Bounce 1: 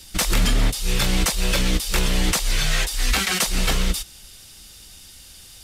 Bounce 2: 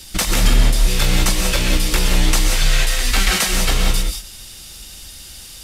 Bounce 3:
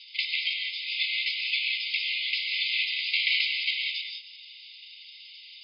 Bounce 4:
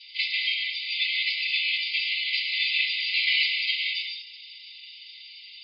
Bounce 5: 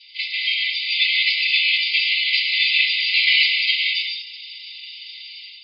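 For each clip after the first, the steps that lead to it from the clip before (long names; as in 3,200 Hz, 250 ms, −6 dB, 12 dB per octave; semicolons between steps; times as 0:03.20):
in parallel at +2.5 dB: downward compressor, threshold −25 dBFS, peak gain reduction 10.5 dB; on the sum: reverb whose tail is shaped and stops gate 210 ms rising, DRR 2.5 dB; level −2 dB
brick-wall band-pass 2,000–5,100 Hz; high-frequency loss of the air 210 metres; level +1 dB
feedback delay network reverb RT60 0.34 s, low-frequency decay 1.2×, high-frequency decay 0.65×, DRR −8.5 dB; level −5.5 dB
automatic gain control gain up to 8 dB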